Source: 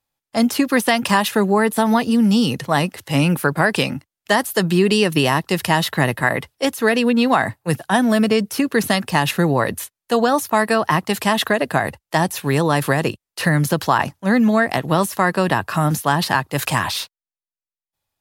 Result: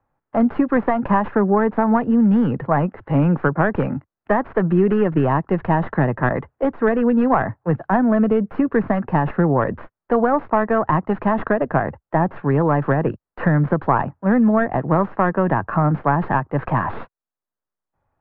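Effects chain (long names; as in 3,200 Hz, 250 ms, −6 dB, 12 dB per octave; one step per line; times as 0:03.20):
stylus tracing distortion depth 0.33 ms
low-pass filter 1,500 Hz 24 dB per octave
multiband upward and downward compressor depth 40%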